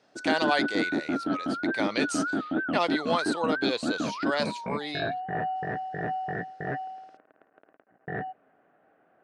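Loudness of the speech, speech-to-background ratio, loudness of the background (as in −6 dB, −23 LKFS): −31.0 LKFS, 0.0 dB, −31.0 LKFS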